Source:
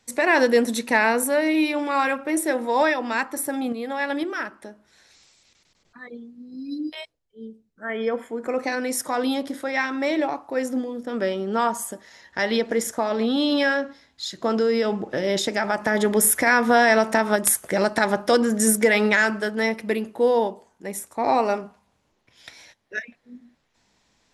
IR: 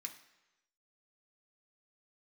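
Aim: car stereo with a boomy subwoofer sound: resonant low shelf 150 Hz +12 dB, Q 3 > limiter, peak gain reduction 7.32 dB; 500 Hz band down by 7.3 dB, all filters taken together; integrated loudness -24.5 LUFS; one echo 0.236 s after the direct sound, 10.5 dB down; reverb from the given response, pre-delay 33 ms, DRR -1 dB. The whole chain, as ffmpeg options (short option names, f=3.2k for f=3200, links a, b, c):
-filter_complex "[0:a]equalizer=f=500:t=o:g=-7.5,aecho=1:1:236:0.299,asplit=2[a][b];[1:a]atrim=start_sample=2205,adelay=33[c];[b][c]afir=irnorm=-1:irlink=0,volume=4.5dB[d];[a][d]amix=inputs=2:normalize=0,lowshelf=f=150:t=q:w=3:g=12,volume=-1.5dB,alimiter=limit=-10.5dB:level=0:latency=1"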